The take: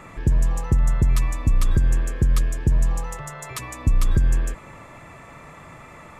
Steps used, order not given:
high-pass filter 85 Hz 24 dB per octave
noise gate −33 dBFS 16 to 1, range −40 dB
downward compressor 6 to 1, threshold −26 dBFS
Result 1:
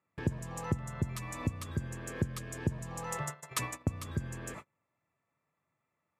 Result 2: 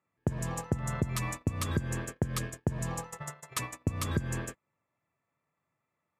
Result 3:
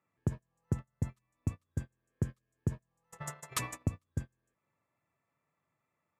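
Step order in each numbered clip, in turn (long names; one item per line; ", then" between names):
noise gate, then downward compressor, then high-pass filter
high-pass filter, then noise gate, then downward compressor
downward compressor, then high-pass filter, then noise gate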